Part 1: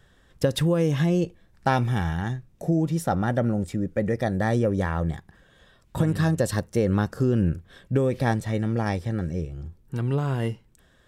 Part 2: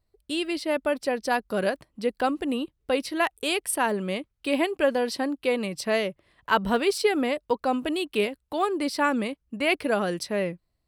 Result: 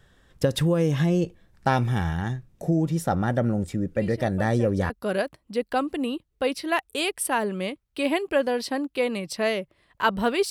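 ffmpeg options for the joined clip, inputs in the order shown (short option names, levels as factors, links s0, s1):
-filter_complex "[1:a]asplit=2[s0][s1];[0:a]apad=whole_dur=10.5,atrim=end=10.5,atrim=end=4.902[s2];[s1]atrim=start=1.378:end=6.98[s3];[s0]atrim=start=0.43:end=1.38,asetpts=PTS-STARTPTS,volume=0.211,afade=t=in:d=0.004:c=hsin,afade=t=out:st=0.946:d=0.004:c=hsin,adelay=3950[s4];[s2][s3]acrossfade=d=0.004:c1=hsin:c2=hsin[s5];[s5][s4]amix=inputs=2:normalize=0"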